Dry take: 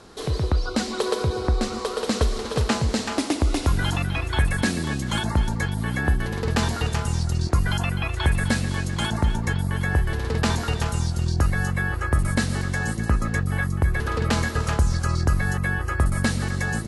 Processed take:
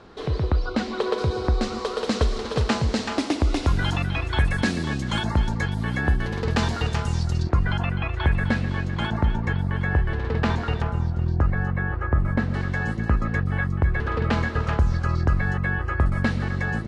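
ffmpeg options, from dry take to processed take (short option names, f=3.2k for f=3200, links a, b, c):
-af "asetnsamples=n=441:p=0,asendcmd='1.18 lowpass f 5600;7.43 lowpass f 2700;10.82 lowpass f 1600;12.54 lowpass f 2900',lowpass=3.3k"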